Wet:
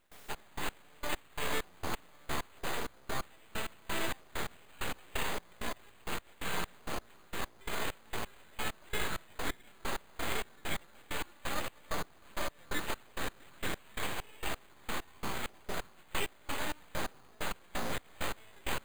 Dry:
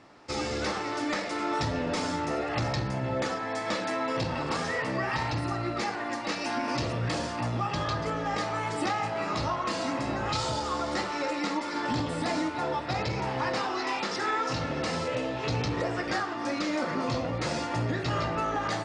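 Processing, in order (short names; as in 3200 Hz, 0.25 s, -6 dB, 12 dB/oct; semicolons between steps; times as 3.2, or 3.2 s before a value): low shelf 350 Hz -8.5 dB; reverse; upward compressor, threshold -31 dBFS; reverse; careless resampling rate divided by 8×, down filtered, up hold; requantised 10-bit, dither triangular; full-wave rectifier; step gate ".xx..x...x." 131 bpm -24 dB; gain +1 dB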